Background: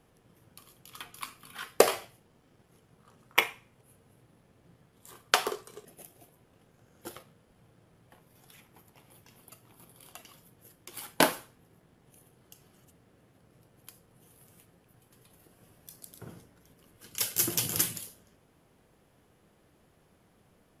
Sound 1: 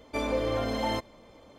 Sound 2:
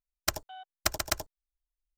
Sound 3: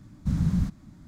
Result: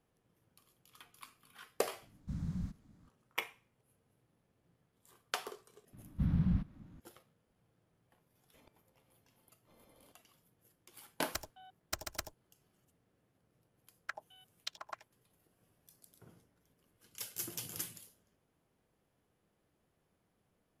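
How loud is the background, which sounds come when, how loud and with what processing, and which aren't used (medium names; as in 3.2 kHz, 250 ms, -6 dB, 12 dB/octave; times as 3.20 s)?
background -13.5 dB
2.02 s: add 3 -14.5 dB
5.93 s: add 3 -6.5 dB + decimation joined by straight lines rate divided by 6×
8.54 s: add 1 -13 dB + inverted gate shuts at -34 dBFS, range -38 dB
11.07 s: add 2 -11 dB
13.81 s: add 2 -3 dB + step-sequenced band-pass 6.2 Hz 600–3500 Hz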